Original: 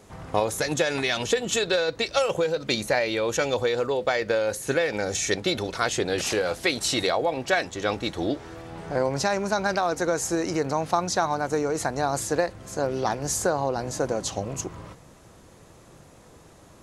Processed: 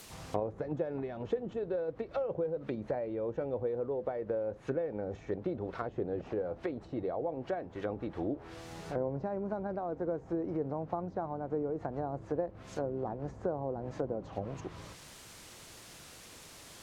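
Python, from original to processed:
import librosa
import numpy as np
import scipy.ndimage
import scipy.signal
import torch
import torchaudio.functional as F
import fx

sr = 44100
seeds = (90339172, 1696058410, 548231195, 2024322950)

y = fx.dmg_noise_colour(x, sr, seeds[0], colour='white', level_db=-42.0)
y = fx.env_lowpass_down(y, sr, base_hz=590.0, full_db=-22.5)
y = y * librosa.db_to_amplitude(-7.5)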